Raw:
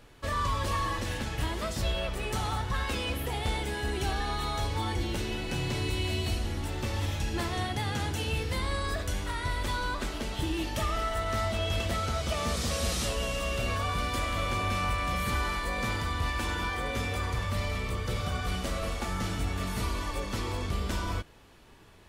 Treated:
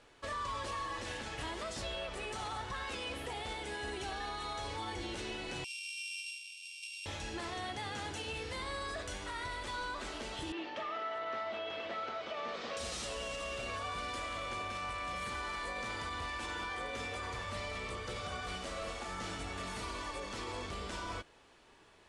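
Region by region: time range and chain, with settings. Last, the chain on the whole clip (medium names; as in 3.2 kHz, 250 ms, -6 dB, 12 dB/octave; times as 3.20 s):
5.64–7.06 s: sorted samples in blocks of 16 samples + Chebyshev high-pass 2.3 kHz, order 10
10.52–12.77 s: band-pass 270–3400 Hz + distance through air 79 m
whole clip: steep low-pass 9.8 kHz 36 dB/octave; tone controls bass -11 dB, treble -1 dB; peak limiter -28 dBFS; trim -3.5 dB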